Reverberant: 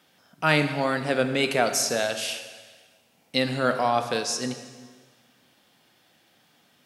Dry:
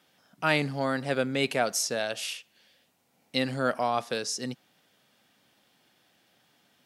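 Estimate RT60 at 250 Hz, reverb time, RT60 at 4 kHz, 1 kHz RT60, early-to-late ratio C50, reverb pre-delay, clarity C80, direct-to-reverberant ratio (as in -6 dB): 1.5 s, 1.5 s, 1.4 s, 1.5 s, 9.0 dB, 7 ms, 10.0 dB, 7.5 dB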